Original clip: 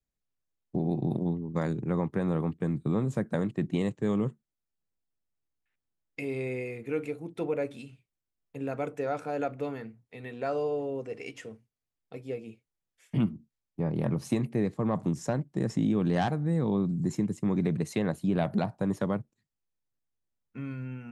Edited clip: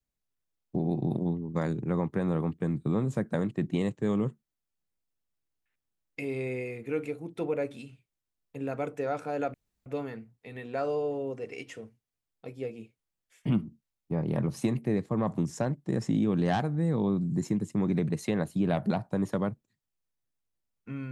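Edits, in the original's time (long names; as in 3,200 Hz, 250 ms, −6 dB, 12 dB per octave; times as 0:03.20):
0:09.54: splice in room tone 0.32 s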